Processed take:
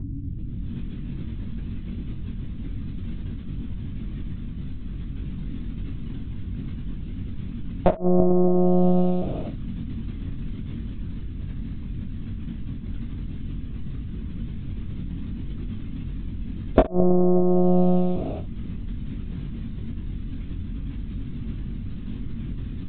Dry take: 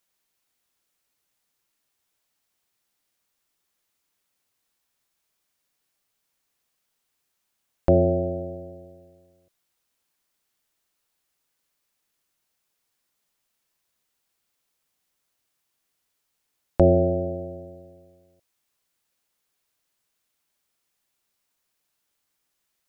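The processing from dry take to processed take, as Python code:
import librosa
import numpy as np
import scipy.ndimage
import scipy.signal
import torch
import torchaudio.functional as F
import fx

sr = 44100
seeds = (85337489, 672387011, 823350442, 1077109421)

y = fx.recorder_agc(x, sr, target_db=-10.5, rise_db_per_s=39.0, max_gain_db=30)
y = fx.pitch_keep_formants(y, sr, semitones=10.5)
y = fx.add_hum(y, sr, base_hz=60, snr_db=11)
y = fx.gate_flip(y, sr, shuts_db=-1.0, range_db=-29)
y = fx.lpc_monotone(y, sr, seeds[0], pitch_hz=180.0, order=16)
y = fx.room_early_taps(y, sr, ms=(22, 66), db=(-6.0, -16.0))
y = y * librosa.db_to_amplitude(-1.0)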